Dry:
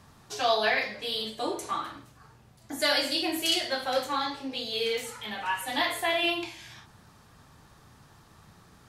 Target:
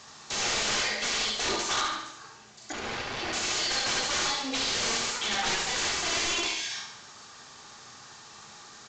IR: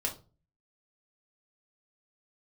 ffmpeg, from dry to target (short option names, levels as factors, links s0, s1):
-filter_complex "[0:a]aemphasis=mode=production:type=riaa,acompressor=threshold=0.0501:ratio=8,aeval=exprs='(mod(25.1*val(0)+1,2)-1)/25.1':c=same,asettb=1/sr,asplit=3[s0][s1][s2];[s0]atrim=end=2.724[s3];[s1]atrim=start=2.72:end=3.33,asetpts=PTS-STARTPTS,afade=t=in:d=0.004:c=qsin,afade=t=out:st=0.606:d=0.004:c=qsin,adynamicsmooth=sensitivity=7:basefreq=1000[s4];[s2]atrim=start=3.326[s5];[s3][s4]acrossfade=d=0.004:c1=hsin:c2=qsin[s6];[s6][s5]acrossfade=d=0.004:c1=qsin:c2=hsin,aecho=1:1:71|142|213|284|355|426:0.447|0.232|0.121|0.0628|0.0327|0.017,asplit=2[s7][s8];[1:a]atrim=start_sample=2205,asetrate=36603,aresample=44100,lowshelf=f=130:g=-8.5[s9];[s8][s9]afir=irnorm=-1:irlink=0,volume=0.531[s10];[s7][s10]amix=inputs=2:normalize=0,volume=1.26" -ar 16000 -c:a pcm_mulaw